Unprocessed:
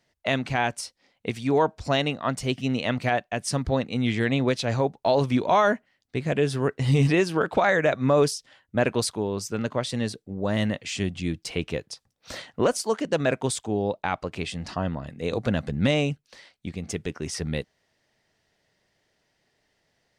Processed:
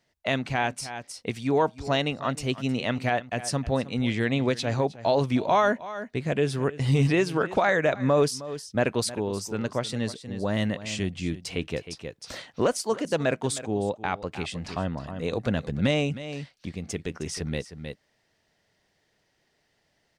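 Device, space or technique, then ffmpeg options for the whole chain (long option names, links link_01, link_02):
ducked delay: -filter_complex "[0:a]asplit=3[link_01][link_02][link_03];[link_02]adelay=312,volume=-3dB[link_04];[link_03]apad=whole_len=904133[link_05];[link_04][link_05]sidechaincompress=threshold=-35dB:ratio=10:attack=16:release=446[link_06];[link_01][link_06]amix=inputs=2:normalize=0,volume=-1.5dB"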